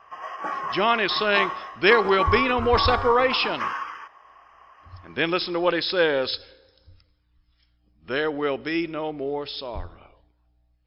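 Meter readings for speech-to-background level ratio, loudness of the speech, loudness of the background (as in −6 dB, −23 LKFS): 5.5 dB, −23.0 LKFS, −28.5 LKFS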